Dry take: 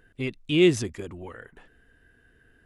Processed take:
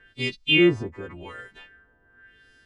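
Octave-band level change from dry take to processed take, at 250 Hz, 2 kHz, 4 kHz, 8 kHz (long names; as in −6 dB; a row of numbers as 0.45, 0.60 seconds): +1.0 dB, +8.5 dB, +7.5 dB, below −10 dB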